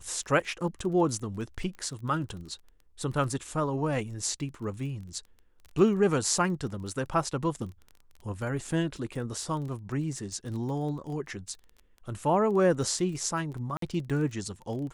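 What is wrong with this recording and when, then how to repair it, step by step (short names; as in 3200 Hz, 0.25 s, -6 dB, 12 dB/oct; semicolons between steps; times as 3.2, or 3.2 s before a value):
crackle 20/s -38 dBFS
13.77–13.82 gap 53 ms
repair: de-click; interpolate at 13.77, 53 ms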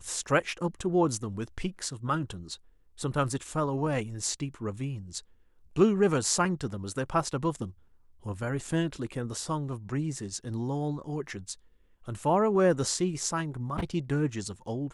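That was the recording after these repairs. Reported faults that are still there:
none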